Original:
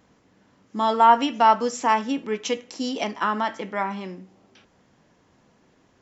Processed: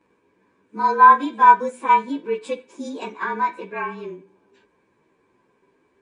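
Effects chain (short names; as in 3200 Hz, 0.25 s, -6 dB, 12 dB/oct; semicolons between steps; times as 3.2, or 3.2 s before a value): inharmonic rescaling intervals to 108%; small resonant body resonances 400/980/1600/2300 Hz, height 17 dB, ringing for 20 ms; gain -9.5 dB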